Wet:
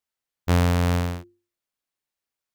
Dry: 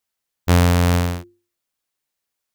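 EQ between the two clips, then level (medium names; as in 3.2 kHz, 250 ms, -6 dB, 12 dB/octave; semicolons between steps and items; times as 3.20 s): treble shelf 5.1 kHz -4.5 dB; -5.0 dB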